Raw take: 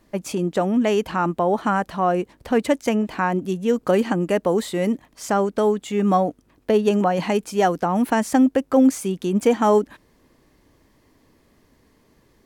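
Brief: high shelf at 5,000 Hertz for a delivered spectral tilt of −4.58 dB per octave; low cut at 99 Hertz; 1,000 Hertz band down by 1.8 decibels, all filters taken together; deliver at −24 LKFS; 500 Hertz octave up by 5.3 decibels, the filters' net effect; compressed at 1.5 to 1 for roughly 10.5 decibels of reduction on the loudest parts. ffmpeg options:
ffmpeg -i in.wav -af "highpass=99,equalizer=frequency=500:width_type=o:gain=8,equalizer=frequency=1000:width_type=o:gain=-7,highshelf=frequency=5000:gain=5,acompressor=threshold=-38dB:ratio=1.5,volume=3dB" out.wav

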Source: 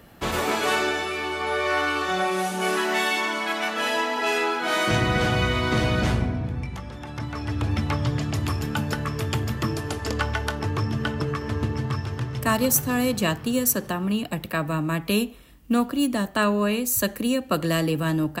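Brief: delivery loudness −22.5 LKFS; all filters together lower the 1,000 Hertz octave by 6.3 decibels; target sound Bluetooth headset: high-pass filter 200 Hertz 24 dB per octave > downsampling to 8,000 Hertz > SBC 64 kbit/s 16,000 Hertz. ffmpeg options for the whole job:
ffmpeg -i in.wav -af "highpass=frequency=200:width=0.5412,highpass=frequency=200:width=1.3066,equalizer=frequency=1000:width_type=o:gain=-8.5,aresample=8000,aresample=44100,volume=5.5dB" -ar 16000 -c:a sbc -b:a 64k out.sbc

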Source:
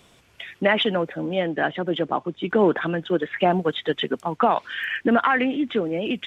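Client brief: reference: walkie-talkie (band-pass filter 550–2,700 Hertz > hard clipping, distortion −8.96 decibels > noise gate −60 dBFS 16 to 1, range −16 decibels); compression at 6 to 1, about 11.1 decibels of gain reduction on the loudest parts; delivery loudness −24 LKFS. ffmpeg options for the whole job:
ffmpeg -i in.wav -af "acompressor=threshold=-26dB:ratio=6,highpass=550,lowpass=2700,asoftclip=type=hard:threshold=-31dB,agate=range=-16dB:threshold=-60dB:ratio=16,volume=12.5dB" out.wav

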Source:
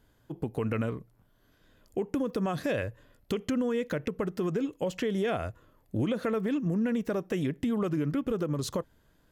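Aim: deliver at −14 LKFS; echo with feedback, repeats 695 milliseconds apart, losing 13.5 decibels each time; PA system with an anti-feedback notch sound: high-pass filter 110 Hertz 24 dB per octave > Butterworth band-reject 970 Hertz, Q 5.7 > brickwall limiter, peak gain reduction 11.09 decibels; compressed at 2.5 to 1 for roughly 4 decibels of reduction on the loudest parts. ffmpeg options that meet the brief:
ffmpeg -i in.wav -af "acompressor=threshold=-31dB:ratio=2.5,highpass=frequency=110:width=0.5412,highpass=frequency=110:width=1.3066,asuperstop=centerf=970:order=8:qfactor=5.7,aecho=1:1:695|1390:0.211|0.0444,volume=27.5dB,alimiter=limit=-5dB:level=0:latency=1" out.wav

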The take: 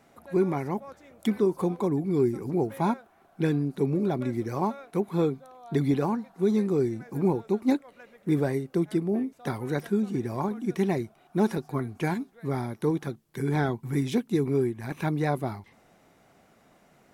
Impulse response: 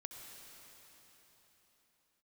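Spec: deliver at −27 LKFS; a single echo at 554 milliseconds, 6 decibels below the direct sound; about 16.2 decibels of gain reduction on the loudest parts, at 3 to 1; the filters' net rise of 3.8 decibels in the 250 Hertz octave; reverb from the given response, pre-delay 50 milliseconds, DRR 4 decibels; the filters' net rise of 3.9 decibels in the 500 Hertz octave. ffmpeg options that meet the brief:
-filter_complex "[0:a]equalizer=frequency=250:width_type=o:gain=4,equalizer=frequency=500:width_type=o:gain=3.5,acompressor=threshold=-38dB:ratio=3,aecho=1:1:554:0.501,asplit=2[link_01][link_02];[1:a]atrim=start_sample=2205,adelay=50[link_03];[link_02][link_03]afir=irnorm=-1:irlink=0,volume=-0.5dB[link_04];[link_01][link_04]amix=inputs=2:normalize=0,volume=9dB"

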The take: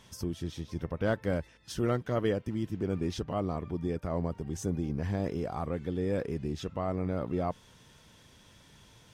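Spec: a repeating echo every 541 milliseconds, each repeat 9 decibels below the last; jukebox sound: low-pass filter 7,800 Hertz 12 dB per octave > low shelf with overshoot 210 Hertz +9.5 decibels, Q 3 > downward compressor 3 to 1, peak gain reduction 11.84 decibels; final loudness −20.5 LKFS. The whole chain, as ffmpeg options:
ffmpeg -i in.wav -af "lowpass=7800,lowshelf=frequency=210:width_type=q:width=3:gain=9.5,aecho=1:1:541|1082|1623|2164:0.355|0.124|0.0435|0.0152,acompressor=threshold=-32dB:ratio=3,volume=13.5dB" out.wav

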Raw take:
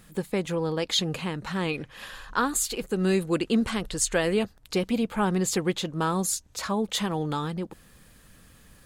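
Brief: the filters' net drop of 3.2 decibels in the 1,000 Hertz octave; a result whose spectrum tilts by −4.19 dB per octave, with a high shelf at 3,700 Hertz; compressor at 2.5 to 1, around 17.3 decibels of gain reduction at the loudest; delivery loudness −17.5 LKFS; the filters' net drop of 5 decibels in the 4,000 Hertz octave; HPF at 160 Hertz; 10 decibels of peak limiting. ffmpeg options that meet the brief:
ffmpeg -i in.wav -af "highpass=160,equalizer=frequency=1000:width_type=o:gain=-4,highshelf=frequency=3700:gain=4,equalizer=frequency=4000:width_type=o:gain=-8.5,acompressor=threshold=-48dB:ratio=2.5,volume=29.5dB,alimiter=limit=-7.5dB:level=0:latency=1" out.wav

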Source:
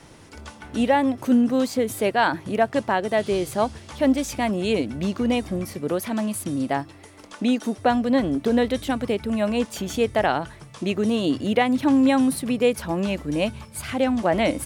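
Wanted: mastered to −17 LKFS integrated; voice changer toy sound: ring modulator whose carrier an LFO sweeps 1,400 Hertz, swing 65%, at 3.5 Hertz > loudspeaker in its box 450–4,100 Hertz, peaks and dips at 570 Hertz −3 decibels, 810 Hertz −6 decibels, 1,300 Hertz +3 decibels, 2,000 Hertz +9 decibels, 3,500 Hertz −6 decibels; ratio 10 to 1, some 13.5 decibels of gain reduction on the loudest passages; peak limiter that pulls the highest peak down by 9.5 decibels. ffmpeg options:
ffmpeg -i in.wav -af "acompressor=threshold=-28dB:ratio=10,alimiter=level_in=3dB:limit=-24dB:level=0:latency=1,volume=-3dB,aeval=exprs='val(0)*sin(2*PI*1400*n/s+1400*0.65/3.5*sin(2*PI*3.5*n/s))':channel_layout=same,highpass=450,equalizer=frequency=570:width_type=q:width=4:gain=-3,equalizer=frequency=810:width_type=q:width=4:gain=-6,equalizer=frequency=1300:width_type=q:width=4:gain=3,equalizer=frequency=2000:width_type=q:width=4:gain=9,equalizer=frequency=3500:width_type=q:width=4:gain=-6,lowpass=frequency=4100:width=0.5412,lowpass=frequency=4100:width=1.3066,volume=16.5dB" out.wav

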